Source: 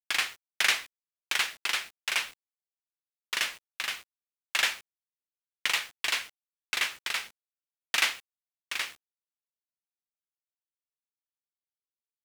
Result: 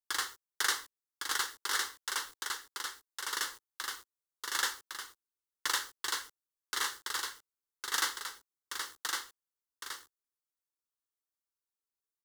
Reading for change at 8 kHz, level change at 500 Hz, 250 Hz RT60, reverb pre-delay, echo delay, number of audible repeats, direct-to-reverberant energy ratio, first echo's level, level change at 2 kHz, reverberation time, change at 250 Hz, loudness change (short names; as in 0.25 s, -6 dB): 0.0 dB, -3.5 dB, none, none, 1.108 s, 1, none, -4.0 dB, -6.5 dB, none, -1.0 dB, -6.0 dB